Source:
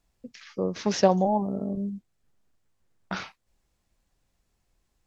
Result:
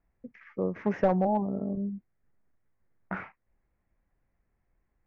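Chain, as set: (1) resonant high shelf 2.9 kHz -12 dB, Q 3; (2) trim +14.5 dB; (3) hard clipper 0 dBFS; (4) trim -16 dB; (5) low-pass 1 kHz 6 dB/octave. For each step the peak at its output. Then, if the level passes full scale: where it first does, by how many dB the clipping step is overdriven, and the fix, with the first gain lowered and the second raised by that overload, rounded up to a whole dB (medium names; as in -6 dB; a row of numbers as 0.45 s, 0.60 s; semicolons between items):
-5.0 dBFS, +9.5 dBFS, 0.0 dBFS, -16.0 dBFS, -16.0 dBFS; step 2, 9.5 dB; step 2 +4.5 dB, step 4 -6 dB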